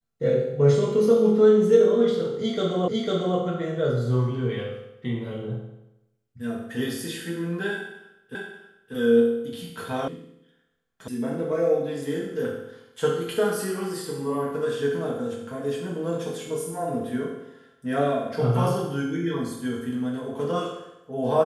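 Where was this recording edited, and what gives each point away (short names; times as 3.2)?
2.88 repeat of the last 0.5 s
8.35 repeat of the last 0.59 s
10.08 sound cut off
11.08 sound cut off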